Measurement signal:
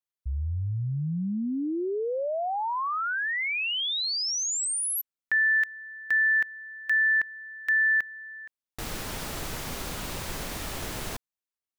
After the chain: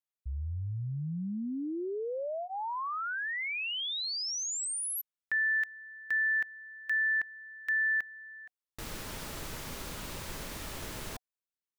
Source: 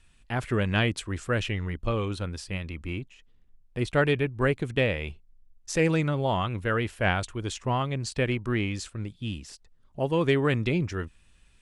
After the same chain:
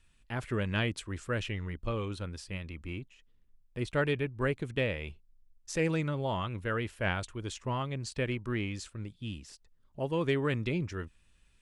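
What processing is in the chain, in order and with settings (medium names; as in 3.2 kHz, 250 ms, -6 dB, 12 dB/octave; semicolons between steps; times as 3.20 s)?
band-stop 740 Hz, Q 12; trim -6 dB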